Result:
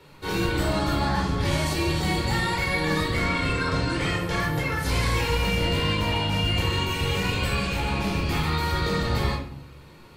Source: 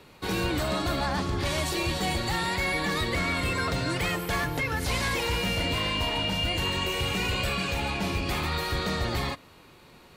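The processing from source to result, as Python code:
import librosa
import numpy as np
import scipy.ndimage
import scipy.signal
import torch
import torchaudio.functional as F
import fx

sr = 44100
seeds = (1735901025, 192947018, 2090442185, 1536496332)

y = fx.lowpass(x, sr, hz=8200.0, slope=12, at=(3.24, 4.4))
y = fx.room_shoebox(y, sr, seeds[0], volume_m3=870.0, walls='furnished', distance_m=4.4)
y = y * librosa.db_to_amplitude(-4.0)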